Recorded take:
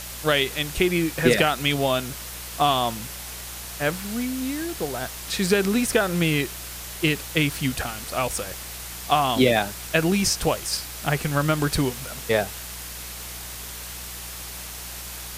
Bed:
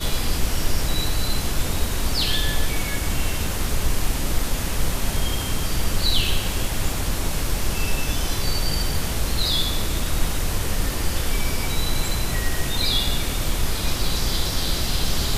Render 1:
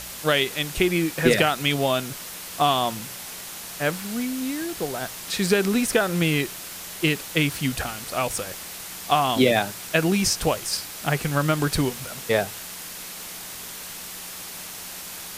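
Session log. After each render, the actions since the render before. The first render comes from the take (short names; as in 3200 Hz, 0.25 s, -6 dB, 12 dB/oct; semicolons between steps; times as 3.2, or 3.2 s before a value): de-hum 60 Hz, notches 2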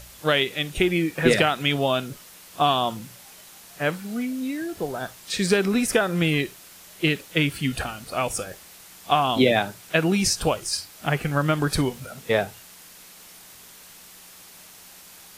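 noise print and reduce 10 dB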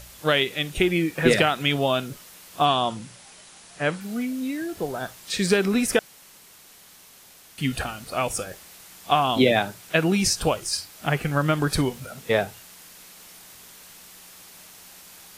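2.65–4.01 brick-wall FIR low-pass 11000 Hz; 5.99–7.58 room tone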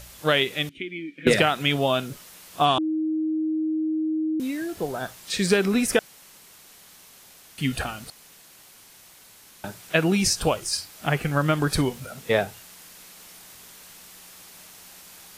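0.69–1.27 vowel filter i; 2.78–4.4 bleep 314 Hz -22 dBFS; 8.1–9.64 room tone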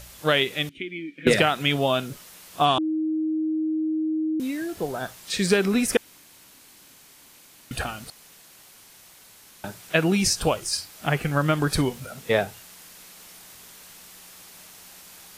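5.97–7.71 room tone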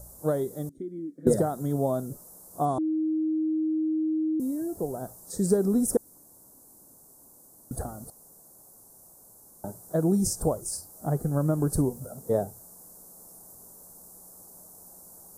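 dynamic EQ 750 Hz, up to -4 dB, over -33 dBFS, Q 0.8; Chebyshev band-stop 680–9100 Hz, order 2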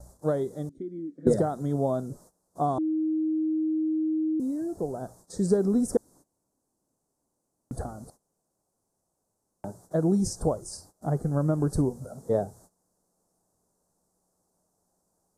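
LPF 6200 Hz 12 dB/oct; gate -52 dBFS, range -18 dB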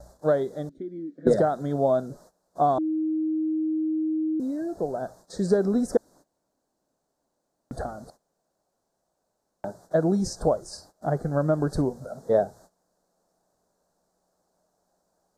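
fifteen-band EQ 100 Hz -6 dB, 630 Hz +7 dB, 1600 Hz +9 dB, 4000 Hz +8 dB, 10000 Hz -8 dB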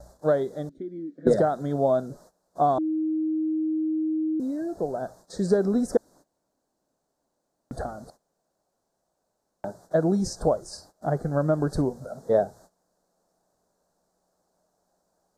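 nothing audible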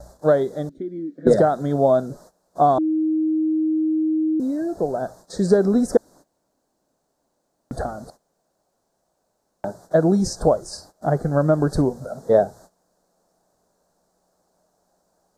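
gain +5.5 dB; limiter -2 dBFS, peak gain reduction 1.5 dB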